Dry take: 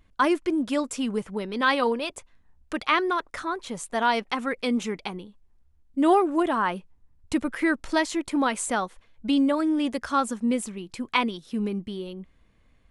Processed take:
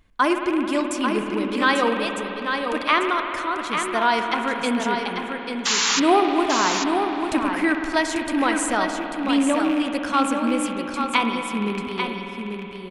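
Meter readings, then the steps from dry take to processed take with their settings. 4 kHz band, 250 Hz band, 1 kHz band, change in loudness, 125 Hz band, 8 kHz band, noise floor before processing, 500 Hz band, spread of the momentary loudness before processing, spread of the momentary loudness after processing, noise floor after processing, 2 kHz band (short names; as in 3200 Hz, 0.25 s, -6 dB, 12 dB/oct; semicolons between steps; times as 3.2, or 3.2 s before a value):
+8.0 dB, +3.0 dB, +5.0 dB, +4.0 dB, +2.5 dB, +9.0 dB, -61 dBFS, +3.5 dB, 13 LU, 8 LU, -33 dBFS, +6.0 dB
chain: rattling part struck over -35 dBFS, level -25 dBFS; painted sound noise, 5.65–6, 820–7400 Hz -24 dBFS; low shelf 440 Hz -3 dB; on a send: echo 0.842 s -6 dB; on the sum: spring tank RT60 4 s, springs 53 ms, chirp 70 ms, DRR 4.5 dB; gain +3 dB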